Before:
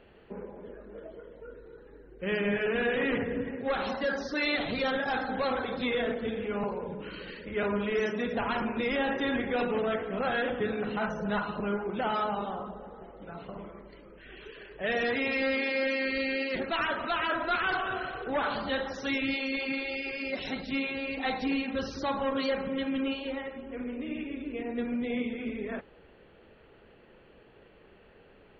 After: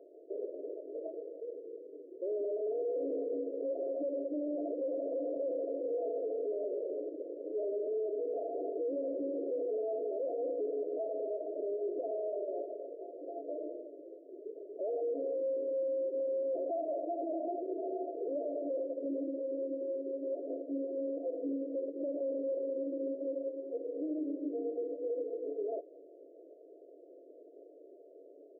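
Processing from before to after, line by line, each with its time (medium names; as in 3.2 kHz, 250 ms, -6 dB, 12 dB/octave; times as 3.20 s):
4.54–5.11 s: echo throw 340 ms, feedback 70%, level -4 dB
13.43–13.90 s: comb 6.4 ms, depth 80%
16.20–17.00 s: peaking EQ 650 Hz +10 dB 0.54 oct
whole clip: FFT band-pass 270–710 Hz; peak limiter -33 dBFS; trim +4 dB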